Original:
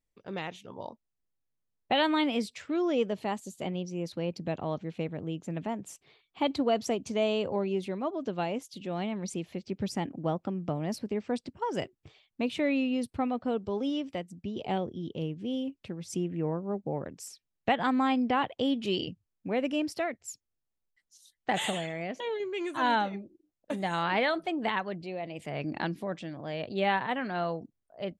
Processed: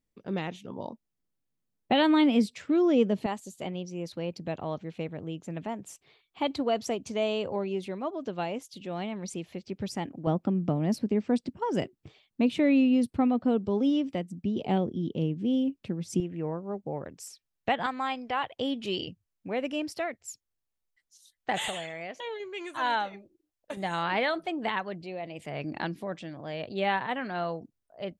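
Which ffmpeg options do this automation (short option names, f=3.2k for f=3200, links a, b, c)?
-af "asetnsamples=n=441:p=0,asendcmd='3.26 equalizer g -2;10.27 equalizer g 7.5;16.2 equalizer g -3;17.86 equalizer g -14;18.52 equalizer g -3.5;21.68 equalizer g -10.5;23.77 equalizer g -1.5',equalizer=f=220:t=o:w=1.7:g=8.5"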